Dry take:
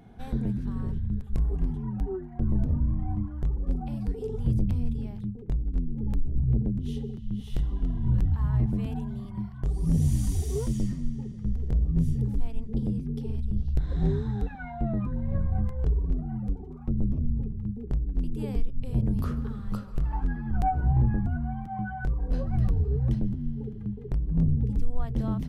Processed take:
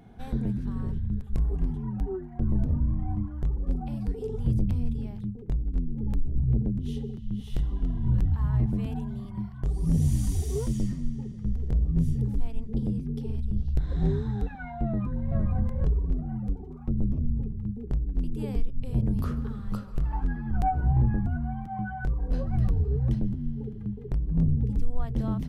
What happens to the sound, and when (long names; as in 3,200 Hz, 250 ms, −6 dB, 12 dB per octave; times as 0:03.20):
0:14.85–0:15.41: delay throw 460 ms, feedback 10%, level −4.5 dB